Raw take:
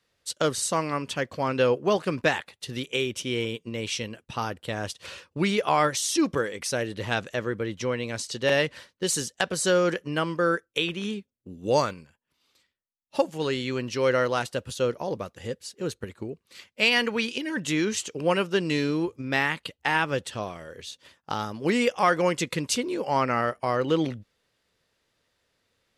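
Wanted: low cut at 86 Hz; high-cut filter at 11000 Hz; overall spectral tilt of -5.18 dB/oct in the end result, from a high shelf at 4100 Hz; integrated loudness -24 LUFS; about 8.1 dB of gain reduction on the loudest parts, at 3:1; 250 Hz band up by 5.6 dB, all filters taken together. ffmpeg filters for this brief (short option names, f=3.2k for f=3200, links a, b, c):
-af "highpass=86,lowpass=11k,equalizer=f=250:t=o:g=7.5,highshelf=f=4.1k:g=-9,acompressor=threshold=-26dB:ratio=3,volume=6.5dB"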